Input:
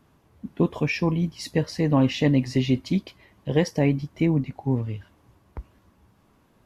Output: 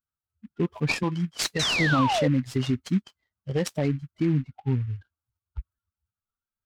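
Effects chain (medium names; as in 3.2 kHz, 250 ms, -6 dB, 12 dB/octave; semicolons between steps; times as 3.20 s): expander on every frequency bin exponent 2; 1.03–1.63 s: frequency weighting D; peak limiter -19.5 dBFS, peak gain reduction 8 dB; 1.59–2.28 s: painted sound fall 480–4200 Hz -29 dBFS; delay time shaken by noise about 1.8 kHz, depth 0.032 ms; trim +4 dB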